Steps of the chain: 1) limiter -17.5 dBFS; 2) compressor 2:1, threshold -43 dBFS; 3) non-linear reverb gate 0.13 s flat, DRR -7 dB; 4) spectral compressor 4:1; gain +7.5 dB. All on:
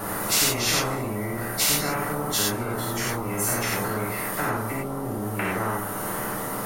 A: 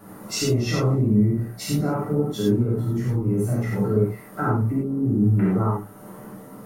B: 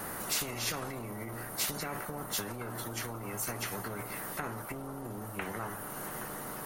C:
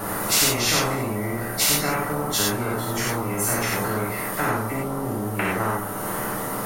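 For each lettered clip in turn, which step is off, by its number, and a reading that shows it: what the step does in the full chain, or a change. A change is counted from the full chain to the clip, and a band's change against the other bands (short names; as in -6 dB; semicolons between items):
4, 125 Hz band +17.0 dB; 3, crest factor change +3.0 dB; 1, mean gain reduction 2.5 dB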